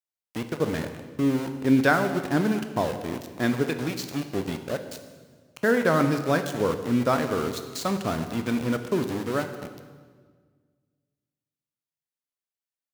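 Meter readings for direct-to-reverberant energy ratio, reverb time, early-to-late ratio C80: 7.0 dB, 1.6 s, 10.5 dB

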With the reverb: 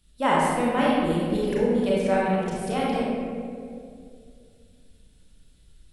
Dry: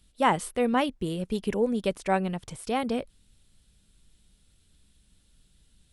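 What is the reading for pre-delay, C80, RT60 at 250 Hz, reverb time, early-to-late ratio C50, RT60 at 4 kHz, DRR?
30 ms, 0.0 dB, 2.9 s, 2.4 s, -2.5 dB, 1.1 s, -6.5 dB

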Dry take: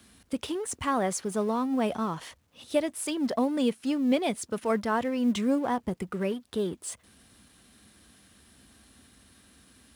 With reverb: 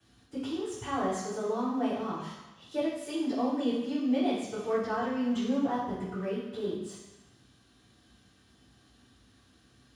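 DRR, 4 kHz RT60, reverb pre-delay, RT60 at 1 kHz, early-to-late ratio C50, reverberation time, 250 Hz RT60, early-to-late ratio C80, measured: -11.5 dB, 1.1 s, 3 ms, 1.1 s, 1.0 dB, 1.1 s, 1.0 s, 4.0 dB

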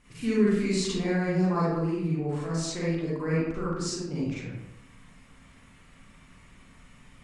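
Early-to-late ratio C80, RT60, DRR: 1.5 dB, 0.85 s, -8.5 dB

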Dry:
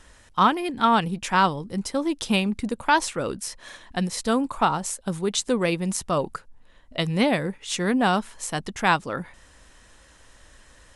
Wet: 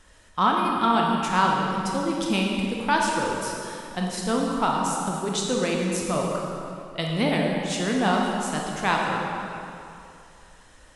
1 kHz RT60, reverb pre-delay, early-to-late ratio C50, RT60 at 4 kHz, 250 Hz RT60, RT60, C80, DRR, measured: 2.7 s, 24 ms, 0.0 dB, 2.1 s, 2.5 s, 2.7 s, 1.5 dB, -1.5 dB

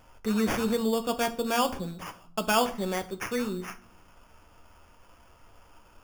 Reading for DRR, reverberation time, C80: 6.5 dB, 0.55 s, 20.0 dB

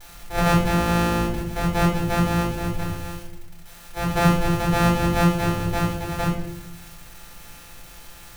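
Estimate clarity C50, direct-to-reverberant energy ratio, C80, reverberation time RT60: 3.0 dB, -6.5 dB, 6.5 dB, 0.75 s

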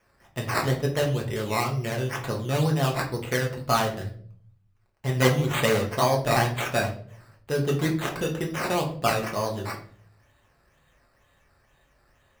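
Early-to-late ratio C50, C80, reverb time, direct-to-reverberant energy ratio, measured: 9.5 dB, 14.0 dB, 0.55 s, -1.0 dB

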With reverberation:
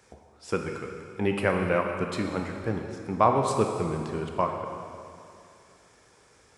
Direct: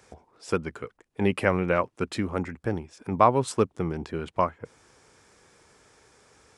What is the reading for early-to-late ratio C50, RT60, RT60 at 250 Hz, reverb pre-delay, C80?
4.0 dB, 2.5 s, 2.5 s, 7 ms, 5.0 dB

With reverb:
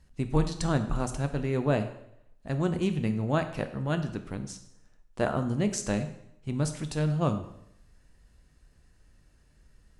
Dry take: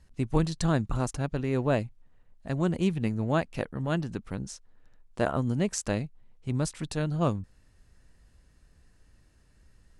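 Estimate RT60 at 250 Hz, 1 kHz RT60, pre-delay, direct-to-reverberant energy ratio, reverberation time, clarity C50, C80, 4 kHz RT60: 0.75 s, 0.70 s, 5 ms, 7.5 dB, 0.75 s, 11.0 dB, 13.5 dB, 0.70 s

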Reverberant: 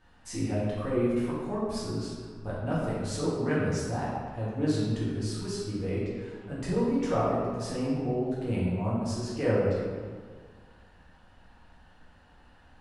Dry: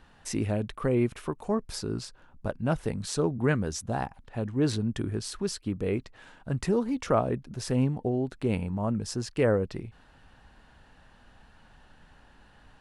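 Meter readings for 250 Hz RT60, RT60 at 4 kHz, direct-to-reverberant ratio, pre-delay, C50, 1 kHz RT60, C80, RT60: 1.9 s, 1.0 s, -9.0 dB, 3 ms, -1.5 dB, 1.7 s, 1.0 dB, 1.7 s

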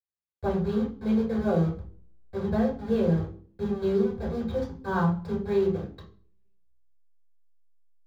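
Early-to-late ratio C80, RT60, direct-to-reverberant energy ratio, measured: 12.0 dB, 0.45 s, -6.5 dB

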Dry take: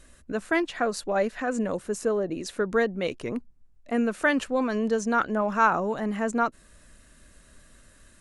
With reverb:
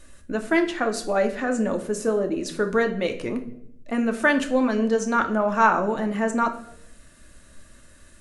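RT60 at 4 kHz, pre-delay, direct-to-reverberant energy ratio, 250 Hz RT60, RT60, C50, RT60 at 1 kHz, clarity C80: 0.50 s, 3 ms, 5.0 dB, 0.95 s, 0.70 s, 11.5 dB, 0.60 s, 15.0 dB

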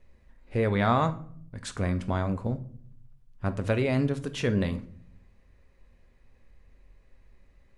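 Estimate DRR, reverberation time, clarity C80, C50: 9.0 dB, 0.60 s, 20.0 dB, 15.5 dB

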